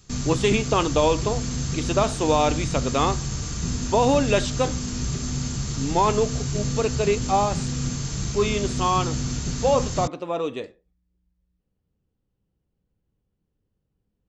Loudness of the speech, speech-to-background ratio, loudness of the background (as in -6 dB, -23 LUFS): -24.0 LUFS, 4.0 dB, -28.0 LUFS